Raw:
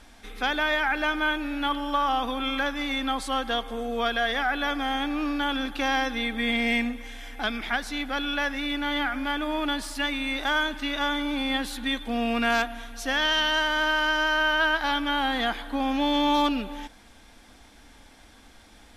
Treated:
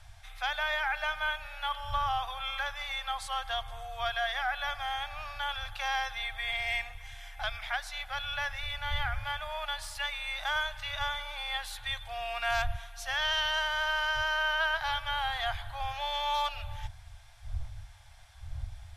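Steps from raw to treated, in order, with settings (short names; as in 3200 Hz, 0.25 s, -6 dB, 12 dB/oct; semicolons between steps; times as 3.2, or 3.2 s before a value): wind noise 85 Hz -38 dBFS; elliptic band-stop 110–660 Hz, stop band 40 dB; gain -5 dB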